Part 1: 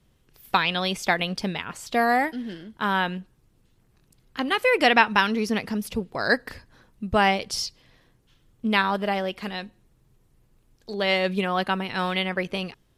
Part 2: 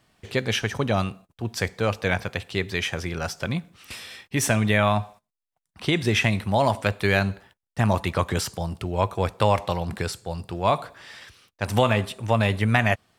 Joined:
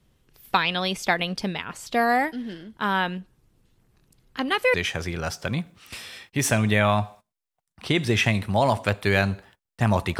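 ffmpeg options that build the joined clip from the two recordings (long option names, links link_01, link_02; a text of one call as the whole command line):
ffmpeg -i cue0.wav -i cue1.wav -filter_complex "[0:a]apad=whole_dur=10.19,atrim=end=10.19,atrim=end=4.742[link_01];[1:a]atrim=start=2.718:end=8.17[link_02];[link_01][link_02]acrossfade=duration=0.004:curve1=hsin:curve2=hsin" out.wav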